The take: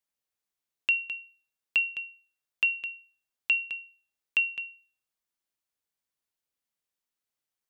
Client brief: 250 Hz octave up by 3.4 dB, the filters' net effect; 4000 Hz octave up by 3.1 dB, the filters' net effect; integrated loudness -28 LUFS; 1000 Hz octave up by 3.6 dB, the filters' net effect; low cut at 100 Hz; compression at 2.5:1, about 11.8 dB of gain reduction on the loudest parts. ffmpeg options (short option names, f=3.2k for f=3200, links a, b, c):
-af "highpass=100,equalizer=f=250:t=o:g=4.5,equalizer=f=1k:t=o:g=4,equalizer=f=4k:t=o:g=5.5,acompressor=threshold=-36dB:ratio=2.5,volume=8dB"